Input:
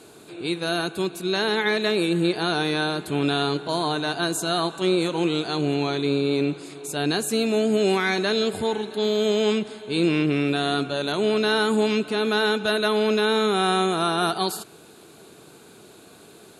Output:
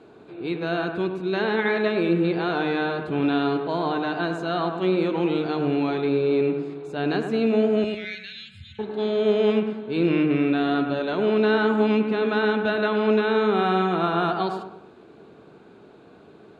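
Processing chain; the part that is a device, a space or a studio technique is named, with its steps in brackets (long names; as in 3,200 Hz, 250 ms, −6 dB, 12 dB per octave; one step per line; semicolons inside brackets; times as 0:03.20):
phone in a pocket (low-pass filter 3,400 Hz 12 dB per octave; high-shelf EQ 2,100 Hz −10.5 dB)
0:07.84–0:08.79: inverse Chebyshev band-stop filter 300–920 Hz, stop band 60 dB
mains-hum notches 50/100/150 Hz
delay with a low-pass on its return 102 ms, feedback 41%, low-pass 2,100 Hz, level −6 dB
dynamic equaliser 2,400 Hz, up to +4 dB, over −40 dBFS, Q 0.95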